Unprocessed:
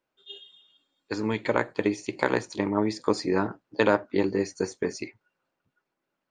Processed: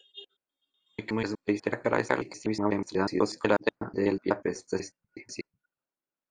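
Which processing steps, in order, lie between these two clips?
slices played last to first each 123 ms, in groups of 4; spectral noise reduction 12 dB; trim -2 dB

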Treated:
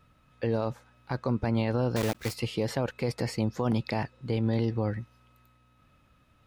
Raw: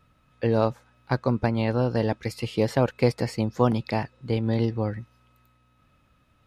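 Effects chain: 1.96–2.37 s: block-companded coder 3-bit; peak limiter -18 dBFS, peak gain reduction 11 dB

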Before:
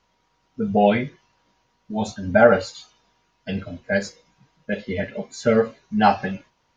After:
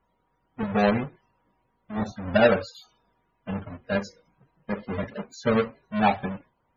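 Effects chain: square wave that keeps the level; loudest bins only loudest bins 64; trim -8 dB

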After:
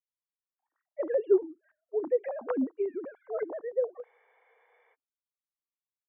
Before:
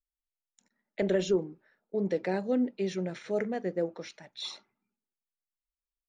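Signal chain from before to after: formants replaced by sine waves; LFO low-pass saw up 3.5 Hz 740–1500 Hz; spectral freeze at 4.07 s, 0.86 s; trim -1.5 dB

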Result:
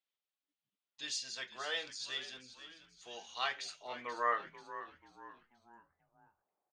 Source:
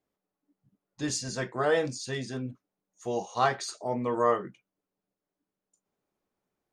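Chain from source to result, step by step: band-pass sweep 3.3 kHz -> 800 Hz, 3.29–5.66 s; frequency-shifting echo 485 ms, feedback 41%, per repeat -82 Hz, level -13 dB; trim +3.5 dB

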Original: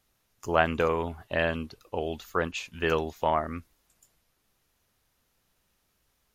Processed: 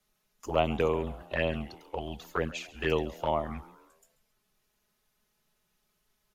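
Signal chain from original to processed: touch-sensitive flanger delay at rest 4.7 ms, full sweep at -21.5 dBFS; frequency shift -20 Hz; frequency-shifting echo 136 ms, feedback 48%, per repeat +110 Hz, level -19 dB

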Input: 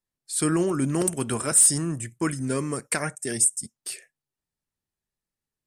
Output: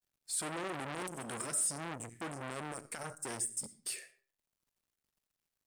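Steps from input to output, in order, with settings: companding laws mixed up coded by mu; 1.00–1.66 s: high-pass 130 Hz 12 dB/octave; 2.96–3.23 s: spectral selection erased 1.6–3.6 kHz; peak limiter -18.5 dBFS, peak gain reduction 10.5 dB; reverberation RT60 0.45 s, pre-delay 25 ms, DRR 13.5 dB; transformer saturation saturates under 2 kHz; trim -6.5 dB

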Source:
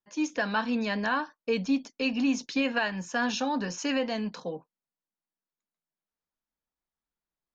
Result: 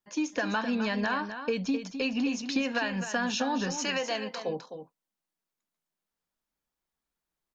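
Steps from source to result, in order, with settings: 3.84–4.48 s: high-pass 650 Hz -> 310 Hz 12 dB/octave; compression, threshold -30 dBFS, peak gain reduction 8.5 dB; delay 258 ms -9.5 dB; trim +4 dB

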